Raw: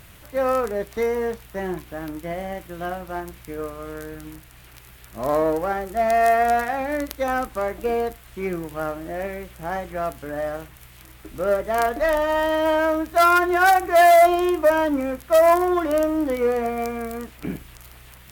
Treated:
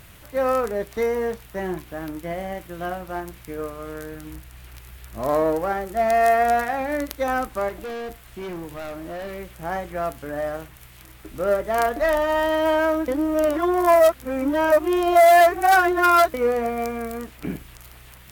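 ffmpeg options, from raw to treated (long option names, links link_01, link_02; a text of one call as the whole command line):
ffmpeg -i in.wav -filter_complex "[0:a]asettb=1/sr,asplit=3[link_01][link_02][link_03];[link_01]atrim=end=4.304[link_04];[link_02]atrim=start=4.3:end=5.22,asetpts=PTS-STARTPTS,afade=type=in:duration=0.004:curve=qsin,afade=type=out:start_time=0.916:duration=0.004:curve=qsin,equalizer=frequency=71:width=2.1:gain=12[link_05];[link_03]atrim=start=5.216[link_06];[link_04][link_05]acrossfade=duration=0.004:curve1=hsin:curve2=qsin[link_07];[link_07][link_06]acrossfade=duration=0.004:curve1=qsin:curve2=hsin,asettb=1/sr,asplit=3[link_08][link_09][link_10];[link_08]atrim=end=7.694[link_11];[link_09]atrim=start=7.69:end=9.39,asetpts=PTS-STARTPTS,afade=type=in:duration=0.004:curve=qsin,afade=type=out:start_time=1.696:duration=0.004:curve=qsin,asoftclip=type=hard:threshold=-30dB[link_12];[link_10]atrim=start=9.386[link_13];[link_11][link_12]acrossfade=duration=0.004:curve1=hsin:curve2=qsin[link_14];[link_14][link_13]acrossfade=duration=0.004:curve1=qsin:curve2=hsin,asplit=3[link_15][link_16][link_17];[link_15]atrim=end=13.082[link_18];[link_16]atrim=start=13.078:end=16.342,asetpts=PTS-STARTPTS,areverse[link_19];[link_17]atrim=start=16.338[link_20];[link_18][link_19]acrossfade=duration=0.004:curve1=hsin:curve2=hsin[link_21];[link_21][link_20]acrossfade=duration=0.004:curve1=hsin:curve2=hsin" out.wav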